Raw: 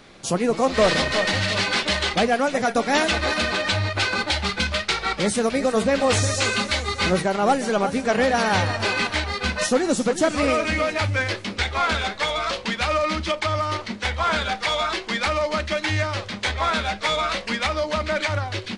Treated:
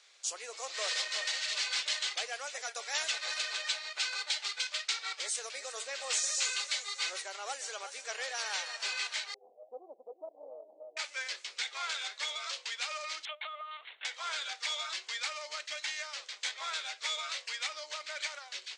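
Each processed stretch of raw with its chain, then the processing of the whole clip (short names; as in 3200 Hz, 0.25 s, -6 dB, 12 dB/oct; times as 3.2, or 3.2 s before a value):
9.34–10.97 Chebyshev low-pass 780 Hz, order 8 + low shelf 150 Hz +7.5 dB + Doppler distortion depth 0.19 ms
13.25–14.05 HPF 410 Hz 24 dB/oct + LPC vocoder at 8 kHz pitch kept
whole clip: elliptic band-pass 440–7600 Hz, stop band 50 dB; differentiator; gain -2 dB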